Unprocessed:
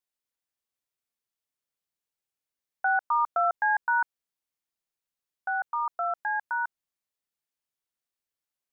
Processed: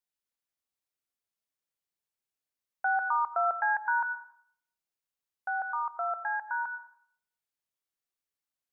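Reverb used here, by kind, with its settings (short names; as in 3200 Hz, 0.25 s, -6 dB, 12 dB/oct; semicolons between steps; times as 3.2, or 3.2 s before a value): plate-style reverb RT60 0.62 s, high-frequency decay 0.9×, pre-delay 80 ms, DRR 10.5 dB; gain -3 dB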